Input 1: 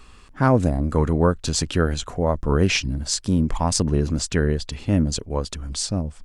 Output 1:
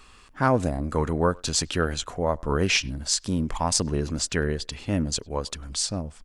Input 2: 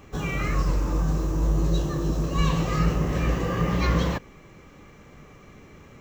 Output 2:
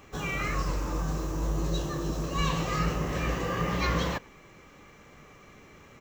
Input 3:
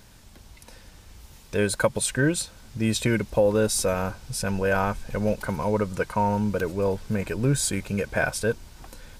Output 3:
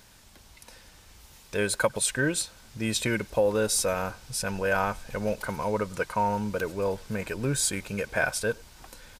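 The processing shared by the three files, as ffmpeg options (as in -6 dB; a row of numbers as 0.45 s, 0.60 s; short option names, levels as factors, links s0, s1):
-filter_complex "[0:a]lowshelf=f=430:g=-7.5,asplit=2[s0][s1];[s1]adelay=100,highpass=300,lowpass=3400,asoftclip=type=hard:threshold=0.266,volume=0.0501[s2];[s0][s2]amix=inputs=2:normalize=0"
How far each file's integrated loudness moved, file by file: -3.5 LU, -5.0 LU, -2.5 LU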